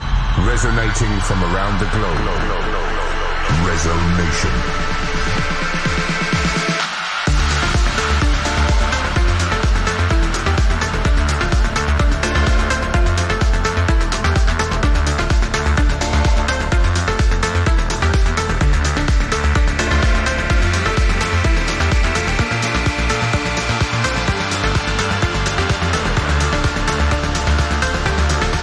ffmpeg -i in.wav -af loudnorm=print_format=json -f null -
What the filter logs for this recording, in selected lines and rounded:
"input_i" : "-17.4",
"input_tp" : "-5.0",
"input_lra" : "1.8",
"input_thresh" : "-27.4",